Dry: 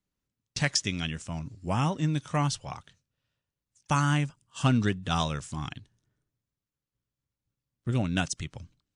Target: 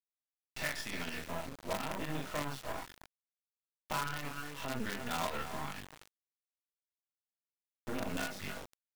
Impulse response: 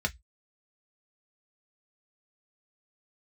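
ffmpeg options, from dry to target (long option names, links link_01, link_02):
-filter_complex "[0:a]asplit=2[link_01][link_02];[link_02]adelay=41,volume=-2dB[link_03];[link_01][link_03]amix=inputs=2:normalize=0,aecho=1:1:292:0.119[link_04];[1:a]atrim=start_sample=2205,afade=type=out:start_time=0.16:duration=0.01,atrim=end_sample=7497[link_05];[link_04][link_05]afir=irnorm=-1:irlink=0,flanger=delay=19:depth=5.2:speed=0.49,acompressor=threshold=-17dB:ratio=16,highpass=370,lowpass=2000,acrusher=bits=5:dc=4:mix=0:aa=0.000001,alimiter=level_in=4.5dB:limit=-24dB:level=0:latency=1:release=68,volume=-4.5dB,volume=2.5dB"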